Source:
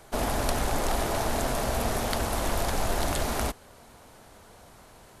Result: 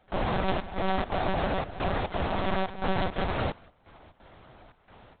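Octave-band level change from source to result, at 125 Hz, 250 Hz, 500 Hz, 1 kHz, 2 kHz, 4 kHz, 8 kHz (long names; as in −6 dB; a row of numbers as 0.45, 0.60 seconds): −0.5 dB, +0.5 dB, −0.5 dB, 0.0 dB, −0.5 dB, −4.0 dB, below −40 dB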